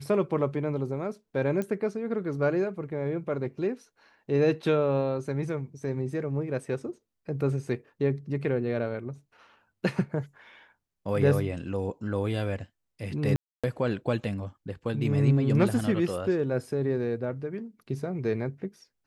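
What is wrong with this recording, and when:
0:01.62: click −20 dBFS
0:13.36–0:13.64: drop-out 276 ms

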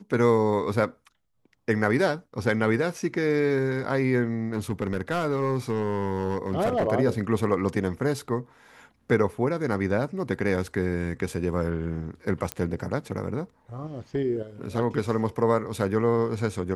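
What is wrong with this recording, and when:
0:04.53–0:06.88: clipping −19.5 dBFS
0:12.52: click −12 dBFS

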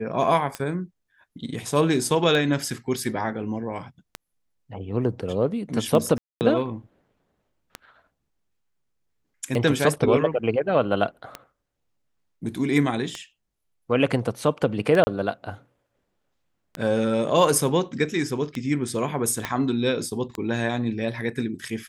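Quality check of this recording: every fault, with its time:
scratch tick 33 1/3 rpm −14 dBFS
0:06.18–0:06.41: drop-out 229 ms
0:15.04–0:15.07: drop-out 30 ms
0:19.45: click −11 dBFS

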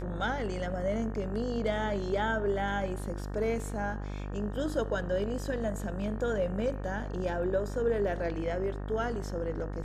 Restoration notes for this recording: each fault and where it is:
mains buzz 50 Hz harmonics 37 −37 dBFS

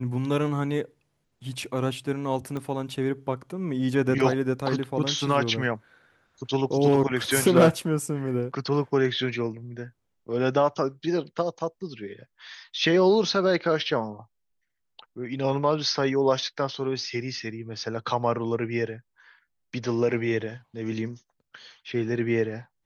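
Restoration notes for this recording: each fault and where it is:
0:02.57: click −21 dBFS

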